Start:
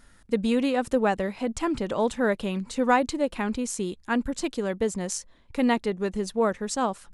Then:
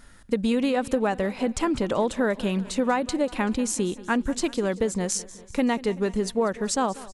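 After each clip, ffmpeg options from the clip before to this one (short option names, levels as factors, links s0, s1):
-af "acompressor=threshold=0.0631:ratio=6,aecho=1:1:191|382|573|764|955:0.112|0.0651|0.0377|0.0219|0.0127,volume=1.68"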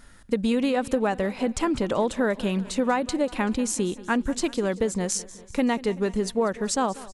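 -af anull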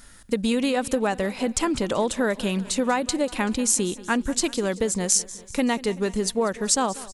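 -af "highshelf=f=3700:g=10"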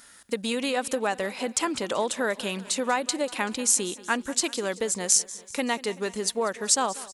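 -af "highpass=f=540:p=1"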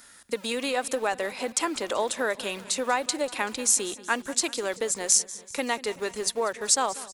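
-filter_complex "[0:a]bandreject=f=3000:w=26,acrossover=split=220|2700[s0][s1][s2];[s0]aeval=exprs='(mod(200*val(0)+1,2)-1)/200':c=same[s3];[s3][s1][s2]amix=inputs=3:normalize=0"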